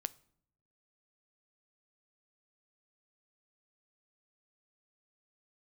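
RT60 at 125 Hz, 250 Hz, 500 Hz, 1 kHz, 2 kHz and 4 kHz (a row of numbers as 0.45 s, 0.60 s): 1.1 s, 0.95 s, 0.70 s, 0.60 s, 0.50 s, 0.45 s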